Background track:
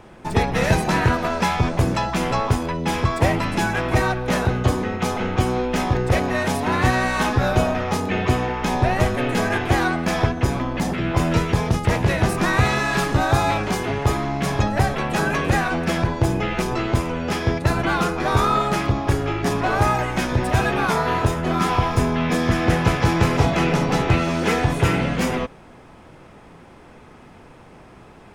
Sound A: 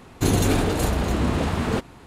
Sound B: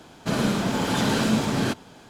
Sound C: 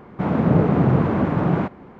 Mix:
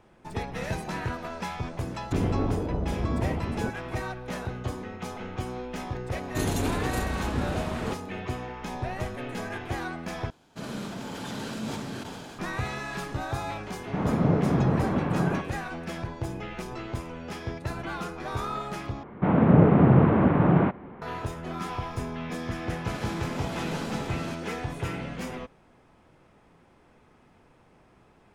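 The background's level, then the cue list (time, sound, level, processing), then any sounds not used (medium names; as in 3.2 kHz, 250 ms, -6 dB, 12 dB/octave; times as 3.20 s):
background track -13.5 dB
1.90 s: add A -6 dB + low-pass that closes with the level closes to 670 Hz, closed at -20 dBFS
6.14 s: add A -8 dB
10.30 s: replace with B -13 dB + decay stretcher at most 23 dB/s
13.74 s: add C -6.5 dB
19.03 s: replace with C -0.5 dB + low-pass 3.2 kHz 24 dB/octave
22.62 s: add B -13.5 dB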